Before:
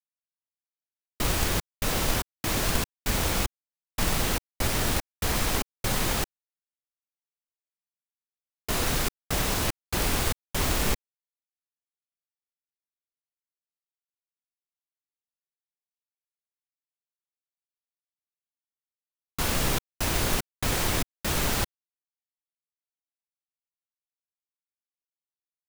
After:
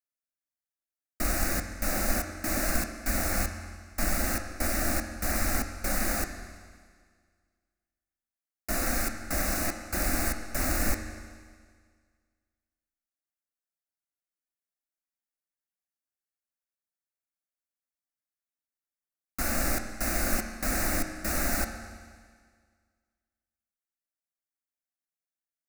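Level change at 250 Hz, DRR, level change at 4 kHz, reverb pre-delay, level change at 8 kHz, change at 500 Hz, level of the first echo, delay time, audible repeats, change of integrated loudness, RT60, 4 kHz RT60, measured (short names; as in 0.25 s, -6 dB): -0.5 dB, 6.0 dB, -8.5 dB, 14 ms, -1.5 dB, -2.5 dB, none, none, none, -2.0 dB, 1.8 s, 1.8 s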